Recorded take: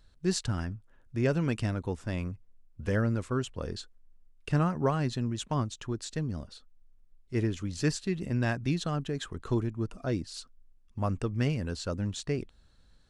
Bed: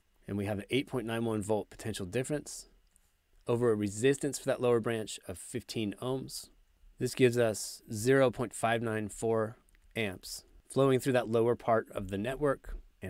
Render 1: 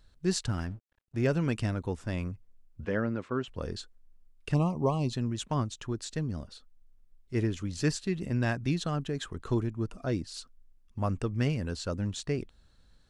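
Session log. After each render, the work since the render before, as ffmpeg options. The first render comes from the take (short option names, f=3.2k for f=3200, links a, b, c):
-filter_complex "[0:a]asettb=1/sr,asplit=3[a][b][c];[a]atrim=end=0.494[d];[b]atrim=start=0.49:end=1.27,asetpts=PTS-STARTPTS,afade=t=in:d=0.004:c=qsin,afade=t=out:st=0.776:d=0.004:c=qsin,aeval=exprs='sgn(val(0))*max(abs(val(0))-0.002,0)':c=same[e];[c]atrim=start=1.266[f];[d][e]acrossfade=d=0.004:c1=hsin:c2=qsin[g];[g][f]acrossfade=d=0.004:c1=qsin:c2=hsin,asettb=1/sr,asplit=3[h][i][j];[h]atrim=end=2.854[k];[i]atrim=start=2.85:end=3.48,asetpts=PTS-STARTPTS,afade=t=in:d=0.004:c=qsin,afade=t=out:st=0.626:d=0.004:c=qsin,highpass=170,lowpass=3.2k[l];[j]atrim=start=3.476[m];[k][l]acrossfade=d=0.004:c1=hsin:c2=qsin[n];[n][m]acrossfade=d=0.004:c1=qsin:c2=hsin,asettb=1/sr,asplit=3[o][p][q];[o]atrim=end=4.544[r];[p]atrim=start=4.54:end=5.13,asetpts=PTS-STARTPTS,afade=t=in:d=0.004:c=qsin,afade=t=out:st=0.586:d=0.004:c=qsin,asuperstop=centerf=1600:order=8:qfactor=1.4[s];[q]atrim=start=5.126[t];[r][s]acrossfade=d=0.004:c1=hsin:c2=qsin[u];[u][t]acrossfade=d=0.004:c1=qsin:c2=hsin"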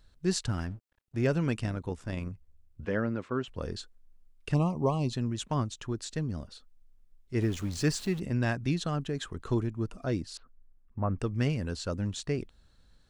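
-filter_complex "[0:a]asettb=1/sr,asplit=3[a][b][c];[a]atrim=end=1.594[d];[b]atrim=start=1.59:end=2.84,asetpts=PTS-STARTPTS,afade=t=in:d=0.004:c=qsin,afade=t=out:st=1.246:d=0.004:c=qsin,tremolo=f=67:d=0.462[e];[c]atrim=start=2.836[f];[d][e]acrossfade=d=0.004:c1=hsin:c2=qsin[g];[g][f]acrossfade=d=0.004:c1=qsin:c2=hsin,asettb=1/sr,asplit=3[h][i][j];[h]atrim=end=7.414[k];[i]atrim=start=7.41:end=8.2,asetpts=PTS-STARTPTS,afade=t=in:d=0.004:c=qsin,afade=t=out:st=0.786:d=0.004:c=qsin,aeval=exprs='val(0)+0.5*0.00841*sgn(val(0))':c=same[l];[j]atrim=start=8.196[m];[k][l]acrossfade=d=0.004:c1=hsin:c2=qsin[n];[n][m]acrossfade=d=0.004:c1=qsin:c2=hsin,asettb=1/sr,asplit=3[o][p][q];[o]atrim=end=10.374[r];[p]atrim=start=10.37:end=11.19,asetpts=PTS-STARTPTS,afade=t=in:d=0.004:c=qsin,afade=t=out:st=0.816:d=0.004:c=qsin,lowpass=f=1.9k:w=0.5412,lowpass=f=1.9k:w=1.3066[s];[q]atrim=start=11.186[t];[r][s]acrossfade=d=0.004:c1=hsin:c2=qsin[u];[u][t]acrossfade=d=0.004:c1=qsin:c2=hsin"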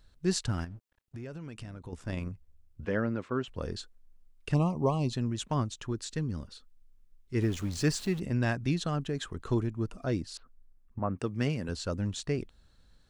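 -filter_complex "[0:a]asettb=1/sr,asplit=3[a][b][c];[a]atrim=end=0.644[d];[b]atrim=start=0.64:end=1.93,asetpts=PTS-STARTPTS,afade=t=in:d=0.004:c=qsin,afade=t=out:st=1.286:d=0.004:c=qsin,acompressor=threshold=-38dB:ratio=8:attack=3.2:release=140:knee=1:detection=peak[e];[c]atrim=start=1.926[f];[d][e]acrossfade=d=0.004:c1=hsin:c2=qsin[g];[g][f]acrossfade=d=0.004:c1=qsin:c2=hsin,asettb=1/sr,asplit=3[h][i][j];[h]atrim=end=5.914[k];[i]atrim=start=5.91:end=7.44,asetpts=PTS-STARTPTS,afade=t=in:d=0.004:c=qsin,afade=t=out:st=1.526:d=0.004:c=qsin,equalizer=f=670:t=o:w=0.22:g=-15[l];[j]atrim=start=7.436[m];[k][l]acrossfade=d=0.004:c1=hsin:c2=qsin[n];[n][m]acrossfade=d=0.004:c1=qsin:c2=hsin,asettb=1/sr,asplit=3[o][p][q];[o]atrim=end=10.994[r];[p]atrim=start=10.99:end=11.69,asetpts=PTS-STARTPTS,afade=t=in:d=0.004:c=qsin,afade=t=out:st=0.696:d=0.004:c=qsin,highpass=130[s];[q]atrim=start=11.686[t];[r][s]acrossfade=d=0.004:c1=hsin:c2=qsin[u];[u][t]acrossfade=d=0.004:c1=qsin:c2=hsin"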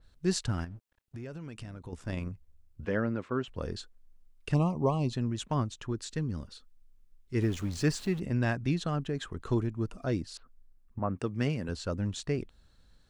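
-af "adynamicequalizer=threshold=0.00316:dfrequency=3300:dqfactor=0.7:tfrequency=3300:tqfactor=0.7:attack=5:release=100:ratio=0.375:range=2.5:mode=cutabove:tftype=highshelf"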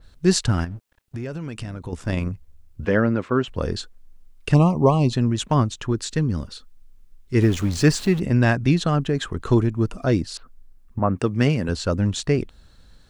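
-af "volume=11dB"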